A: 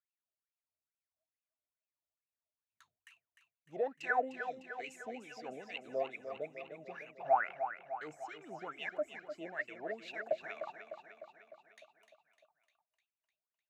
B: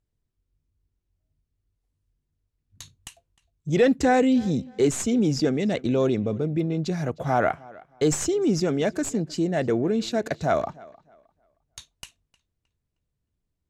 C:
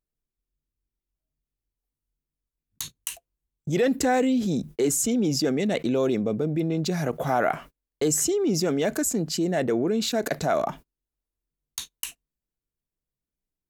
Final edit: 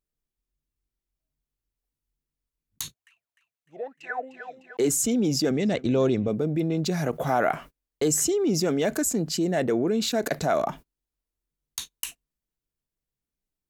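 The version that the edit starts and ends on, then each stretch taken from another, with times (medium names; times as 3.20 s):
C
2.94–4.77 s: from A
5.51–6.28 s: from B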